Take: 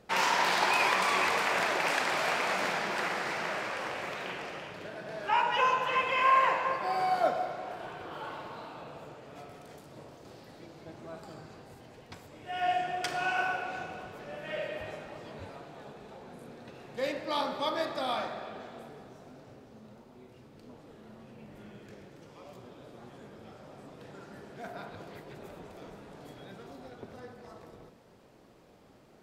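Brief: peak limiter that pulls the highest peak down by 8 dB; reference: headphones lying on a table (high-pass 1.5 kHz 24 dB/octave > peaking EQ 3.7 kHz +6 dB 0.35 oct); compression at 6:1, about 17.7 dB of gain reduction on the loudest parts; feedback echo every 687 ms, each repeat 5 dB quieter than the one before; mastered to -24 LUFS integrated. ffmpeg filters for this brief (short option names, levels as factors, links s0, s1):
-af "acompressor=threshold=0.01:ratio=6,alimiter=level_in=3.55:limit=0.0631:level=0:latency=1,volume=0.282,highpass=f=1500:w=0.5412,highpass=f=1500:w=1.3066,equalizer=f=3700:t=o:w=0.35:g=6,aecho=1:1:687|1374|2061|2748|3435|4122|4809:0.562|0.315|0.176|0.0988|0.0553|0.031|0.0173,volume=16.8"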